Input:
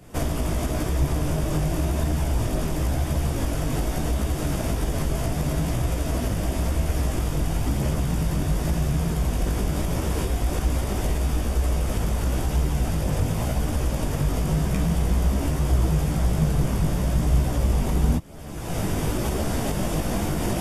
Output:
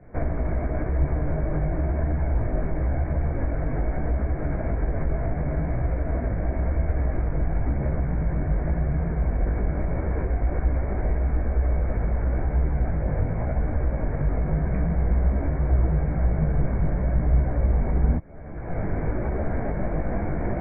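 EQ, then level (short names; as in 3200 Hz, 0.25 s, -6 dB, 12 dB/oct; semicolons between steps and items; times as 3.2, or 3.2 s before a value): rippled Chebyshev low-pass 2300 Hz, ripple 6 dB; low shelf 91 Hz +9.5 dB; 0.0 dB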